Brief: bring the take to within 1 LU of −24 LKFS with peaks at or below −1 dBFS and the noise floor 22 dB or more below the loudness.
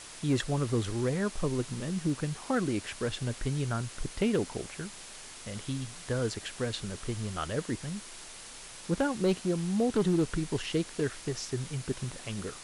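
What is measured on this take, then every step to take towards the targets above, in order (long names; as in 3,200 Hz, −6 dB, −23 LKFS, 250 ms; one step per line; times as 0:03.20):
share of clipped samples 0.3%; peaks flattened at −20.5 dBFS; background noise floor −47 dBFS; target noise floor −55 dBFS; integrated loudness −32.5 LKFS; sample peak −20.5 dBFS; target loudness −24.0 LKFS
→ clipped peaks rebuilt −20.5 dBFS
noise reduction from a noise print 8 dB
level +8.5 dB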